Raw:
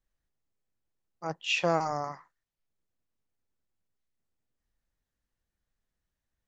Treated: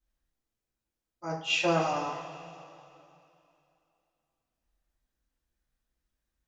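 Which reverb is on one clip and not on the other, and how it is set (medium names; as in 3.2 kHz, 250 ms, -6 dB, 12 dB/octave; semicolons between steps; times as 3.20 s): two-slope reverb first 0.35 s, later 2.8 s, from -17 dB, DRR -8.5 dB; trim -8 dB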